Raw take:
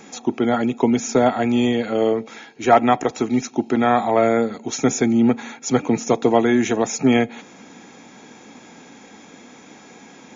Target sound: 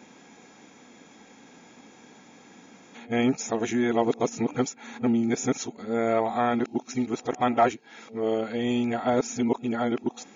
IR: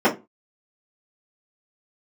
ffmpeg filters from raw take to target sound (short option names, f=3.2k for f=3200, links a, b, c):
-af "areverse,volume=-7.5dB"